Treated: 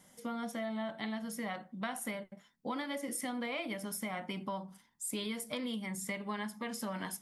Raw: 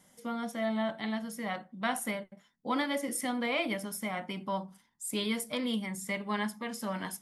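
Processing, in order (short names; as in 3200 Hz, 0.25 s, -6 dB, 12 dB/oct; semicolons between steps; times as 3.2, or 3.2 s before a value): compressor, threshold -36 dBFS, peak gain reduction 10 dB; gain +1 dB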